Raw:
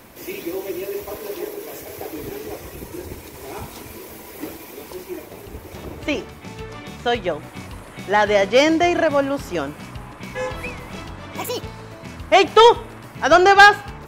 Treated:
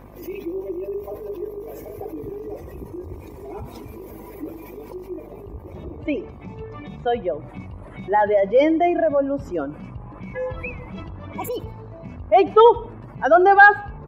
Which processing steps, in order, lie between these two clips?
expanding power law on the bin magnitudes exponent 1.9
hum with harmonics 50 Hz, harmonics 24, −44 dBFS −4 dB per octave
repeating echo 76 ms, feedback 41%, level −22 dB
level −1 dB

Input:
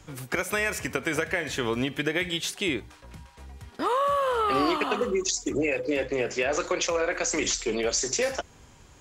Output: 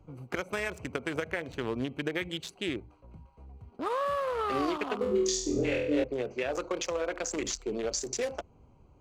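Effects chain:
adaptive Wiener filter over 25 samples
0:04.98–0:06.04: flutter between parallel walls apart 4.1 metres, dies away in 0.61 s
level −4.5 dB

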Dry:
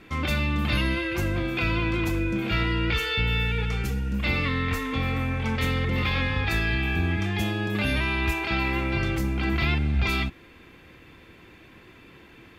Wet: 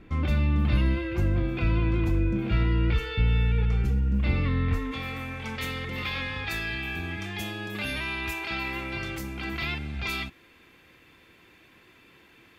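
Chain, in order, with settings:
spectral tilt −2.5 dB per octave, from 0:04.91 +1.5 dB per octave
level −5.5 dB

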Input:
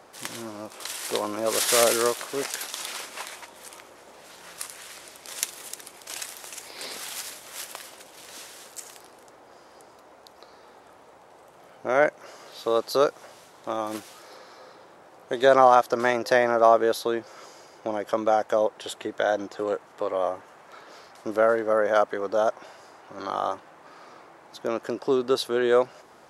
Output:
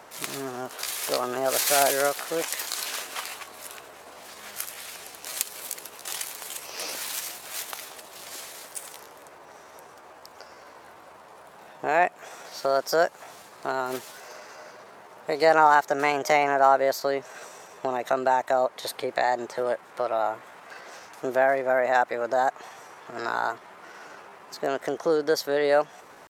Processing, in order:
in parallel at +1 dB: downward compressor, threshold −30 dBFS, peak gain reduction 17.5 dB
on the sum: pitch shifter +3 semitones
level −3 dB

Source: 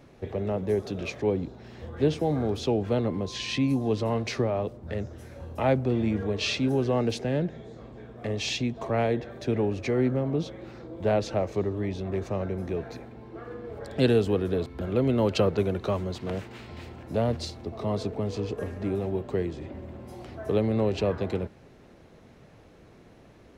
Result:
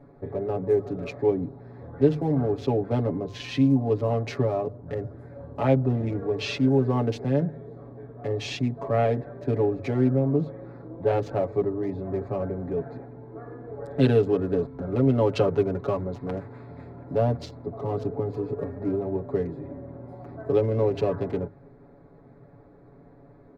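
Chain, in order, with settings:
adaptive Wiener filter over 15 samples
high-shelf EQ 2,800 Hz −9 dB
mains-hum notches 50/100/150 Hz
comb filter 7.1 ms, depth 90%

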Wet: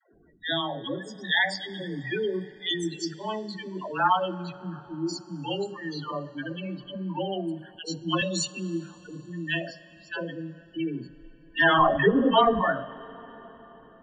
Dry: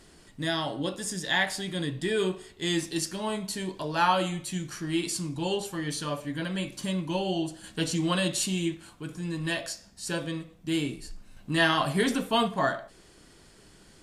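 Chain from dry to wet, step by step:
0:04.61–0:05.09: inverse Chebyshev low-pass filter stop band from 2,700 Hz, stop band 40 dB
gate on every frequency bin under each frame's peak −15 dB strong
low-pass that shuts in the quiet parts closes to 1,000 Hz, open at −22 dBFS
spectral tilt +2 dB per octave
0:11.59–0:12.56: mid-hump overdrive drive 24 dB, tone 1,000 Hz, clips at −9 dBFS
all-pass dispersion lows, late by 142 ms, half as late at 410 Hz
spectral peaks only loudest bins 32
dense smooth reverb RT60 4.8 s, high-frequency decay 0.75×, DRR 17 dB
0:07.79–0:08.22: multiband upward and downward expander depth 70%
level +2 dB

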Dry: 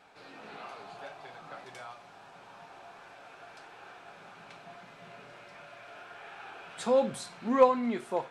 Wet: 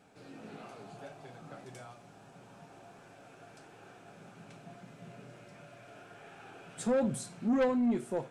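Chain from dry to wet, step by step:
octave-band graphic EQ 125/250/1,000/2,000/4,000/8,000 Hz +8/+5/−8/−5/−7/+4 dB
soft clipping −23.5 dBFS, distortion −10 dB

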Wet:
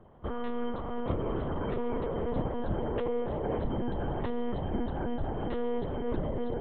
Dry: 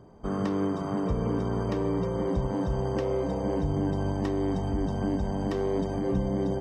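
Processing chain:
parametric band 180 Hz −8.5 dB 1.1 octaves
one-pitch LPC vocoder at 8 kHz 240 Hz
level −1 dB

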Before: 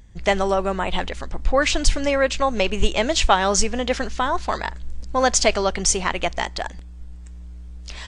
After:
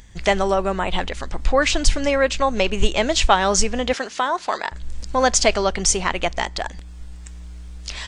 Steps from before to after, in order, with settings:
0:03.93–0:04.72: high-pass filter 330 Hz 12 dB per octave
one half of a high-frequency compander encoder only
level +1 dB

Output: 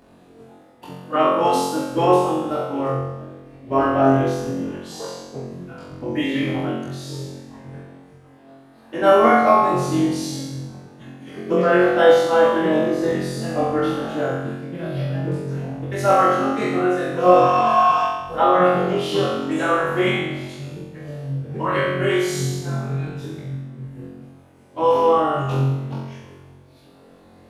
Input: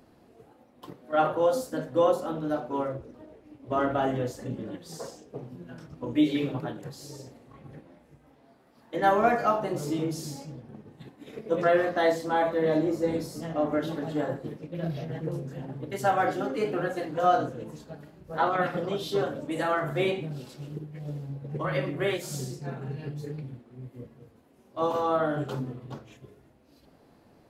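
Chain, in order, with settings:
formants moved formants −2 semitones
parametric band 1,300 Hz +3 dB 2.6 octaves
healed spectral selection 0:17.31–0:18.04, 610–8,700 Hz before
on a send: flutter between parallel walls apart 3.8 metres, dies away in 1 s
on the sum: level +2.5 dB

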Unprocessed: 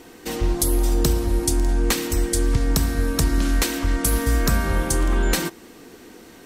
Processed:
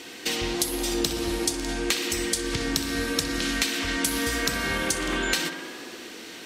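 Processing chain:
meter weighting curve D
downward compressor 4 to 1, threshold −24 dBFS, peak gain reduction 12 dB
tape delay 63 ms, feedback 89%, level −9.5 dB, low-pass 3,500 Hz

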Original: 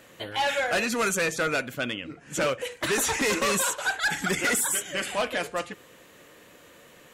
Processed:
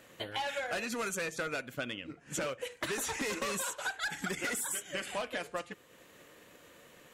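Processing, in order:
transient designer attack +3 dB, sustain −4 dB
downward compressor, threshold −28 dBFS, peak gain reduction 7.5 dB
level −5 dB

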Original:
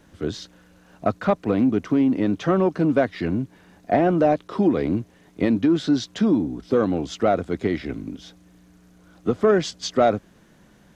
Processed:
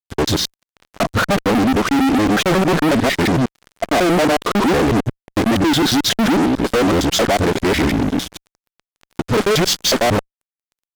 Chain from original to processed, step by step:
reversed piece by piece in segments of 91 ms
fuzz pedal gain 37 dB, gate −44 dBFS

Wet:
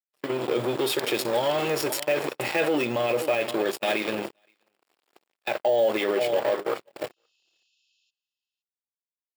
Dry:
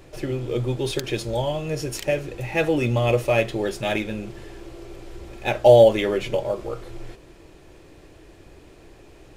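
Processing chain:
bad sample-rate conversion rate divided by 2×, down none, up hold
dead-zone distortion −33 dBFS
healed spectral selection 0:07.13–0:08.08, 2,500–7,200 Hz before
single-tap delay 519 ms −20 dB
automatic gain control gain up to 16 dB
noise gate −27 dBFS, range −39 dB
brickwall limiter −18.5 dBFS, peak gain reduction 17 dB
high-pass filter 310 Hz 12 dB per octave
notch filter 6,200 Hz, Q 6.5
one half of a high-frequency compander encoder only
level +4.5 dB

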